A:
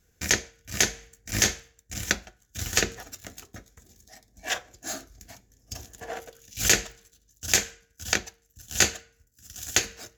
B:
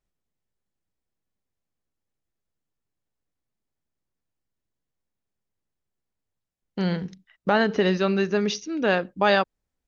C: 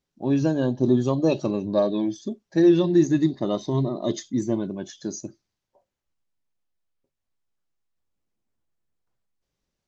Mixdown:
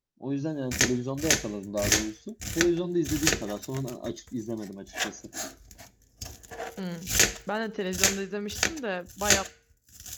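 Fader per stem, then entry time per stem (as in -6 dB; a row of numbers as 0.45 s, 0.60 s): -1.0 dB, -10.0 dB, -9.0 dB; 0.50 s, 0.00 s, 0.00 s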